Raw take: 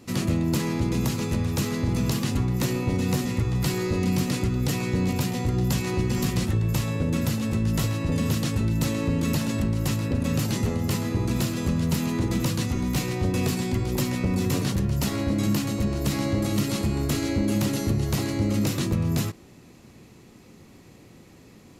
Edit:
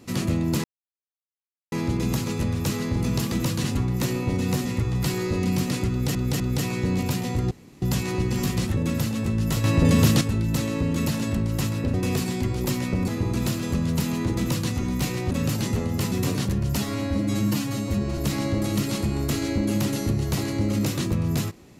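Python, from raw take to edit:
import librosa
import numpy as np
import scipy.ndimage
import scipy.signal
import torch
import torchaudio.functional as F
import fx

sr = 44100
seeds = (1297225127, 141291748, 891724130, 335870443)

y = fx.edit(x, sr, fx.insert_silence(at_s=0.64, length_s=1.08),
    fx.repeat(start_s=4.5, length_s=0.25, count=3),
    fx.insert_room_tone(at_s=5.61, length_s=0.31),
    fx.cut(start_s=6.56, length_s=0.48),
    fx.clip_gain(start_s=7.91, length_s=0.57, db=7.0),
    fx.swap(start_s=10.21, length_s=0.81, other_s=13.25, other_length_s=1.14),
    fx.duplicate(start_s=12.32, length_s=0.32, to_s=2.24),
    fx.stretch_span(start_s=15.05, length_s=0.93, factor=1.5), tone=tone)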